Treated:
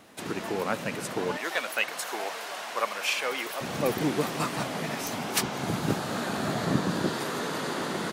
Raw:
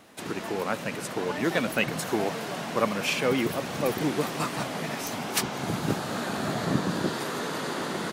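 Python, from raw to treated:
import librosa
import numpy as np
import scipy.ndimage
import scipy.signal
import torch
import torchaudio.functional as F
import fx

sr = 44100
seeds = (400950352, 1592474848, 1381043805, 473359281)

y = fx.highpass(x, sr, hz=710.0, slope=12, at=(1.37, 3.61))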